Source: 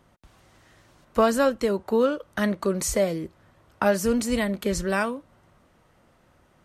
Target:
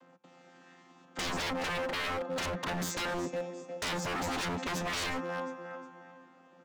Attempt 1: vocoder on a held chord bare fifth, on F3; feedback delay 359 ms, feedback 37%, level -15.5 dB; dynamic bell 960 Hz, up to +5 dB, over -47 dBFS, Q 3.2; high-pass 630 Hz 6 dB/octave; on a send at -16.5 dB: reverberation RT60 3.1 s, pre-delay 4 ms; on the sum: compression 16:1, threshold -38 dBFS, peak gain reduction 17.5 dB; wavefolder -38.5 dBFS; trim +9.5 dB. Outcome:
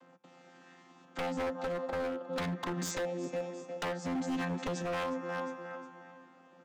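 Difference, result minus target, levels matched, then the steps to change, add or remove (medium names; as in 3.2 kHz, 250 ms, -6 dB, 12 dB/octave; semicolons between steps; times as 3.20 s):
compression: peak gain reduction +10 dB
change: compression 16:1, threshold -27.5 dBFS, peak gain reduction 7.5 dB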